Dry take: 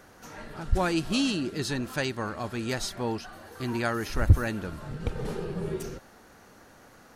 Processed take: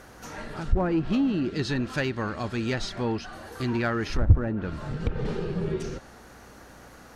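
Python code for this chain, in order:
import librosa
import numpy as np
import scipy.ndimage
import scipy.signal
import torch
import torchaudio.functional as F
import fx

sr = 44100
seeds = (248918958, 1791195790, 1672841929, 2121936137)

p1 = fx.dynamic_eq(x, sr, hz=800.0, q=0.72, threshold_db=-41.0, ratio=4.0, max_db=-4)
p2 = fx.env_lowpass_down(p1, sr, base_hz=950.0, full_db=-22.0)
p3 = np.clip(10.0 ** (25.5 / 20.0) * p2, -1.0, 1.0) / 10.0 ** (25.5 / 20.0)
p4 = p2 + (p3 * 10.0 ** (-3.0 / 20.0))
y = fx.add_hum(p4, sr, base_hz=60, snr_db=29)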